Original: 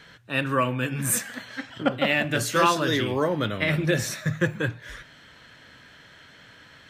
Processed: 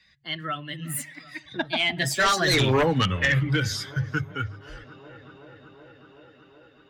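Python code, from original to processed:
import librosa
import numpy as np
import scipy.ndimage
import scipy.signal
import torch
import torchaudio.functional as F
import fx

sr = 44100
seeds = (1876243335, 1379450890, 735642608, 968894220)

y = fx.bin_expand(x, sr, power=1.5)
y = fx.doppler_pass(y, sr, speed_mps=49, closest_m=8.6, pass_at_s=2.74)
y = fx.peak_eq(y, sr, hz=430.0, db=-10.0, octaves=2.6)
y = fx.fold_sine(y, sr, drive_db=13, ceiling_db=-17.5)
y = fx.high_shelf(y, sr, hz=6000.0, db=-7.0)
y = fx.hum_notches(y, sr, base_hz=50, count=3)
y = fx.echo_tape(y, sr, ms=376, feedback_pct=83, wet_db=-23.5, lp_hz=2100.0, drive_db=17.0, wow_cents=13)
y = fx.band_squash(y, sr, depth_pct=40)
y = y * librosa.db_to_amplitude(4.0)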